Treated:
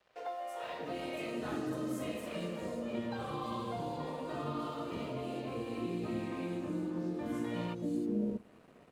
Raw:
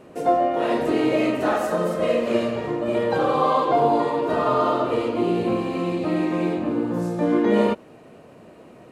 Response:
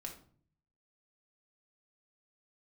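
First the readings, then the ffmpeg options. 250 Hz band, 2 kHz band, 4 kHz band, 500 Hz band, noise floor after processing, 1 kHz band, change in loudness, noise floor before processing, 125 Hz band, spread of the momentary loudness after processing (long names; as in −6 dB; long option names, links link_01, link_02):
−13.5 dB, −15.0 dB, −12.0 dB, −18.5 dB, −59 dBFS, −19.0 dB, −16.5 dB, −47 dBFS, −11.0 dB, 4 LU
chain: -filter_complex "[0:a]acrossover=split=550|5000[link_01][link_02][link_03];[link_03]adelay=320[link_04];[link_01]adelay=630[link_05];[link_05][link_02][link_04]amix=inputs=3:normalize=0,acrossover=split=240|3000[link_06][link_07][link_08];[link_07]acompressor=threshold=-31dB:ratio=6[link_09];[link_06][link_09][link_08]amix=inputs=3:normalize=0,asplit=2[link_10][link_11];[1:a]atrim=start_sample=2205[link_12];[link_11][link_12]afir=irnorm=-1:irlink=0,volume=-12dB[link_13];[link_10][link_13]amix=inputs=2:normalize=0,aeval=exprs='sgn(val(0))*max(abs(val(0))-0.00266,0)':channel_layout=same,volume=-9dB"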